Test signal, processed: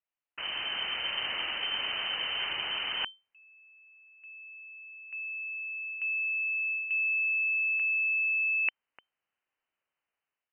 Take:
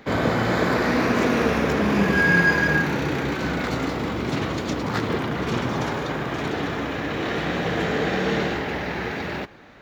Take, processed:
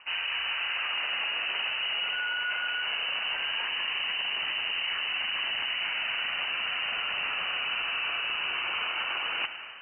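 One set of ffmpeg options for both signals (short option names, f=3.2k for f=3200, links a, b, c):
-af "dynaudnorm=f=250:g=5:m=10dB,alimiter=limit=-13.5dB:level=0:latency=1:release=39,areverse,acompressor=threshold=-30dB:ratio=4,areverse,lowpass=f=2.6k:t=q:w=0.5098,lowpass=f=2.6k:t=q:w=0.6013,lowpass=f=2.6k:t=q:w=0.9,lowpass=f=2.6k:t=q:w=2.563,afreqshift=-3100"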